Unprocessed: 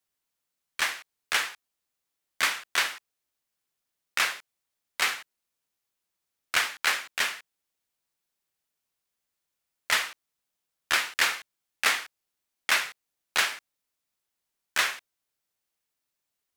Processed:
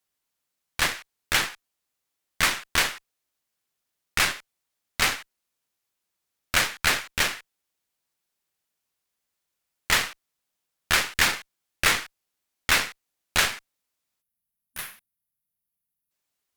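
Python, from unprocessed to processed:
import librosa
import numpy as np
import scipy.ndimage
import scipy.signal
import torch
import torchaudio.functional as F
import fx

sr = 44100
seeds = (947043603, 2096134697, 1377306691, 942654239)

y = fx.spec_box(x, sr, start_s=14.22, length_s=1.89, low_hz=250.0, high_hz=9500.0, gain_db=-16)
y = fx.cheby_harmonics(y, sr, harmonics=(8,), levels_db=(-15,), full_scale_db=-10.0)
y = y * 10.0 ** (2.0 / 20.0)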